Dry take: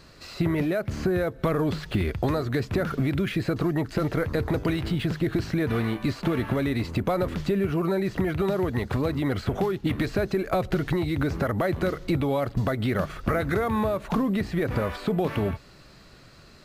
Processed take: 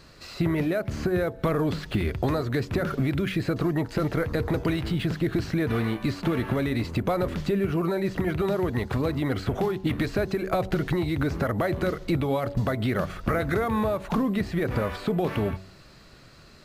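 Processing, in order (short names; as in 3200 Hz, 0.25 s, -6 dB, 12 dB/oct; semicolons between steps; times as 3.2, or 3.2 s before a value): de-hum 94.61 Hz, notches 11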